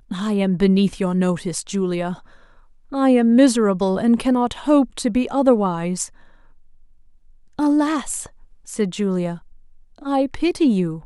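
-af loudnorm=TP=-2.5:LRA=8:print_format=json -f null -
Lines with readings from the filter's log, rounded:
"input_i" : "-19.8",
"input_tp" : "-2.6",
"input_lra" : "6.9",
"input_thresh" : "-31.1",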